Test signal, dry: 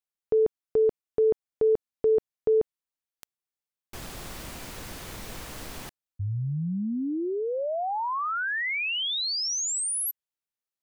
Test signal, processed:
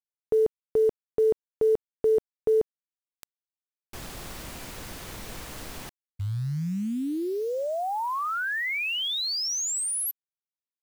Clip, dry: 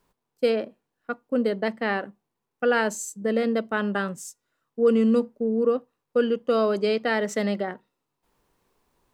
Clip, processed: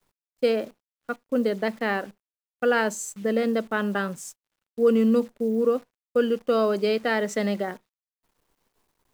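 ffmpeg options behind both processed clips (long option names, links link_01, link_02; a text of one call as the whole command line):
ffmpeg -i in.wav -af "acrusher=bits=9:dc=4:mix=0:aa=0.000001" out.wav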